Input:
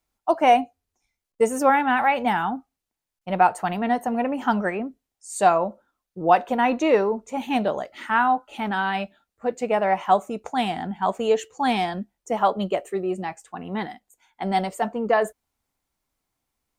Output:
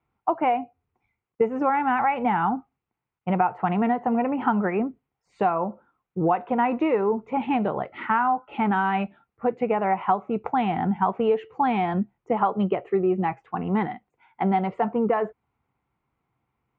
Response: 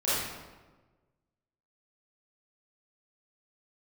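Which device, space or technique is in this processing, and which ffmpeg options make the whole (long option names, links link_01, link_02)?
bass amplifier: -af "acompressor=threshold=-25dB:ratio=5,highpass=73,equalizer=frequency=130:width_type=q:width=4:gain=7,equalizer=frequency=270:width_type=q:width=4:gain=-4,equalizer=frequency=600:width_type=q:width=4:gain=-9,equalizer=frequency=1700:width_type=q:width=4:gain=-8,lowpass=frequency=2200:width=0.5412,lowpass=frequency=2200:width=1.3066,volume=8dB"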